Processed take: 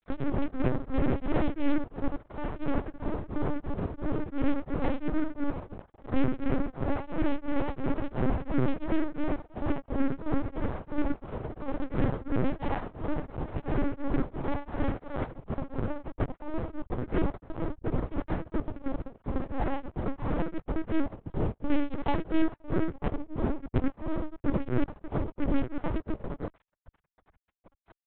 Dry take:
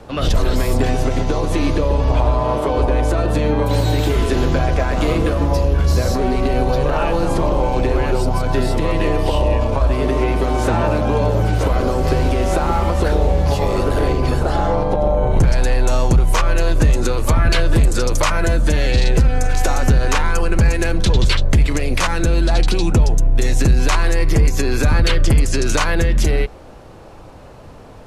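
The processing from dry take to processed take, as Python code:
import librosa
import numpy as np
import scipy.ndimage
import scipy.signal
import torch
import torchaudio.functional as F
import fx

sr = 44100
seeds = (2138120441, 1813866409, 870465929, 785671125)

y = fx.rattle_buzz(x, sr, strikes_db=-17.0, level_db=-12.0)
y = scipy.signal.sosfilt(scipy.signal.butter(2, 48.0, 'highpass', fs=sr, output='sos'), y)
y = fx.hum_notches(y, sr, base_hz=50, count=3)
y = fx.over_compress(y, sr, threshold_db=-21.0, ratio=-0.5)
y = fx.formant_cascade(y, sr, vowel='u')
y = fx.comb_fb(y, sr, f0_hz=270.0, decay_s=0.19, harmonics='all', damping=0.0, mix_pct=70)
y = y + 10.0 ** (-22.0 / 20.0) * np.pad(y, (int(409 * sr / 1000.0), 0))[:len(y)]
y = fx.fuzz(y, sr, gain_db=38.0, gate_db=-45.0)
y = fx.lpc_vocoder(y, sr, seeds[0], excitation='pitch_kept', order=8)
y = y * np.abs(np.cos(np.pi * 2.9 * np.arange(len(y)) / sr))
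y = y * librosa.db_to_amplitude(-4.0)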